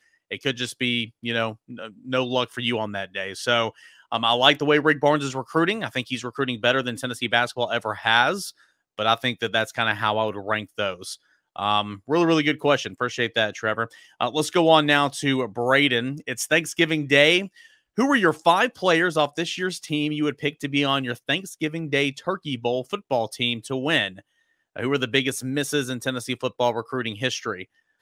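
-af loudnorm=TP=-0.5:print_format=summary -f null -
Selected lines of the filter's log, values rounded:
Input Integrated:    -23.2 LUFS
Input True Peak:      -1.3 dBTP
Input LRA:             5.2 LU
Input Threshold:     -33.5 LUFS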